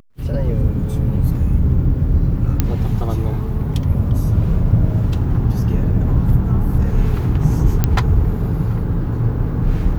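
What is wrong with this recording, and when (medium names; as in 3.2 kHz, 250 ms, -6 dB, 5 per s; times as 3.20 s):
2.60 s: pop -2 dBFS
7.84 s: pop -2 dBFS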